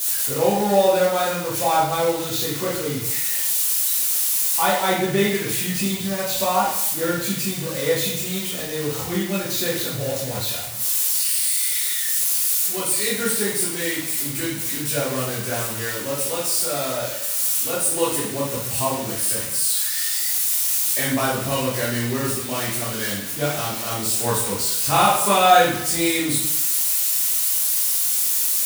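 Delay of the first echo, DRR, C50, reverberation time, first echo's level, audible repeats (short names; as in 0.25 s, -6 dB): none, -7.0 dB, 1.0 dB, 0.75 s, none, none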